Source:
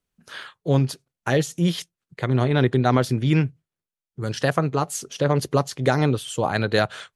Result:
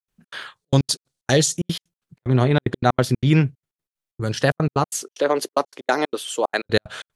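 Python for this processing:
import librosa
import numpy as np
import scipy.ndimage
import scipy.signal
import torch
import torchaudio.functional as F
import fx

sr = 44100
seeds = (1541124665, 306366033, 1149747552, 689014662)

y = fx.band_shelf(x, sr, hz=5900.0, db=10.0, octaves=1.7, at=(0.56, 1.57))
y = fx.highpass(y, sr, hz=300.0, slope=24, at=(5.02, 6.66))
y = fx.step_gate(y, sr, bpm=186, pattern='.xx.xxxx.x.x', floor_db=-60.0, edge_ms=4.5)
y = y * 10.0 ** (3.0 / 20.0)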